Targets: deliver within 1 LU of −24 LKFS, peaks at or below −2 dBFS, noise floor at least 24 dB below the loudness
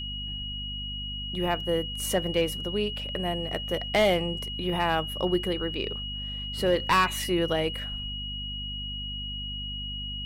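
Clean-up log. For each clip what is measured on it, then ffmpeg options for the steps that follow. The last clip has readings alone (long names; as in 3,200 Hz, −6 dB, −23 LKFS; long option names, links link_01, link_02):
mains hum 50 Hz; hum harmonics up to 250 Hz; level of the hum −36 dBFS; interfering tone 2,900 Hz; level of the tone −34 dBFS; integrated loudness −28.5 LKFS; sample peak −14.0 dBFS; target loudness −24.0 LKFS
→ -af "bandreject=frequency=50:width_type=h:width=6,bandreject=frequency=100:width_type=h:width=6,bandreject=frequency=150:width_type=h:width=6,bandreject=frequency=200:width_type=h:width=6,bandreject=frequency=250:width_type=h:width=6"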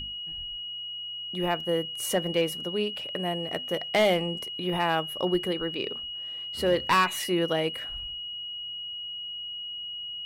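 mains hum none found; interfering tone 2,900 Hz; level of the tone −34 dBFS
→ -af "bandreject=frequency=2900:width=30"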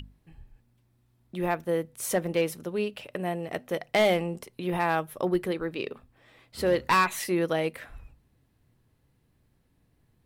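interfering tone none found; integrated loudness −28.5 LKFS; sample peak −14.5 dBFS; target loudness −24.0 LKFS
→ -af "volume=4.5dB"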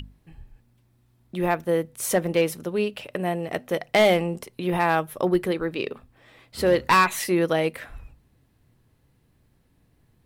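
integrated loudness −24.0 LKFS; sample peak −10.0 dBFS; background noise floor −64 dBFS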